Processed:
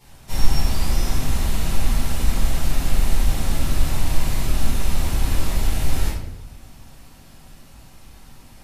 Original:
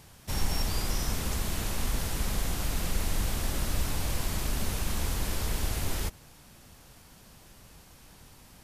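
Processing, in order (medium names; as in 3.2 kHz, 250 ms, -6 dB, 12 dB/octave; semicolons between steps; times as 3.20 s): simulated room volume 210 m³, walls mixed, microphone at 4.4 m; trim -7.5 dB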